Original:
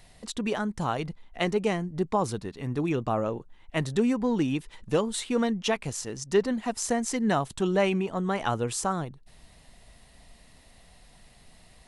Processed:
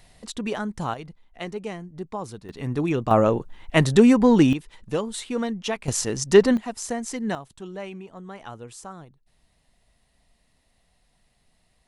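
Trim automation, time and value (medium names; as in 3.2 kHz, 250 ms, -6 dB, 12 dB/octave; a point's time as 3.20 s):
+0.5 dB
from 0.94 s -6.5 dB
from 2.49 s +3.5 dB
from 3.11 s +10 dB
from 4.53 s -1 dB
from 5.88 s +9 dB
from 6.57 s -2 dB
from 7.35 s -11.5 dB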